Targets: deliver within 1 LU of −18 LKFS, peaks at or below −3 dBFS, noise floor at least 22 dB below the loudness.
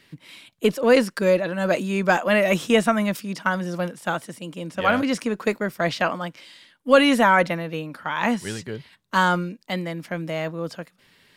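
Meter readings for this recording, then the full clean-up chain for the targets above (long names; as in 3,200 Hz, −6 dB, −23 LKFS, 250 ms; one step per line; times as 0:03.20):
integrated loudness −22.5 LKFS; sample peak −2.5 dBFS; target loudness −18.0 LKFS
→ level +4.5 dB
brickwall limiter −3 dBFS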